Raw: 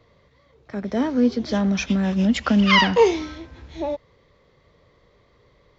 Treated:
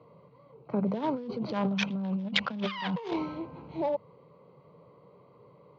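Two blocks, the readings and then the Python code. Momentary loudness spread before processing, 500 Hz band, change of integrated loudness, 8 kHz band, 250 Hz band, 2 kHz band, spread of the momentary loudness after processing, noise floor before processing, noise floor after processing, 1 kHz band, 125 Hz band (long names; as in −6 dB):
19 LU, −11.5 dB, −11.5 dB, can't be measured, −11.0 dB, −12.0 dB, 6 LU, −59 dBFS, −58 dBFS, −10.5 dB, −9.5 dB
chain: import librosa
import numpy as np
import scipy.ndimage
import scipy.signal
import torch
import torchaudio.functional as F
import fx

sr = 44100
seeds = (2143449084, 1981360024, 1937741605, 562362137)

y = fx.wiener(x, sr, points=25)
y = fx.hum_notches(y, sr, base_hz=50, count=4)
y = fx.dynamic_eq(y, sr, hz=300.0, q=1.9, threshold_db=-34.0, ratio=4.0, max_db=-5)
y = fx.over_compress(y, sr, threshold_db=-30.0, ratio=-1.0)
y = fx.cabinet(y, sr, low_hz=140.0, low_slope=24, high_hz=4900.0, hz=(150.0, 250.0, 350.0, 670.0, 1000.0, 3500.0), db=(4, -6, -5, -4, 5, 4))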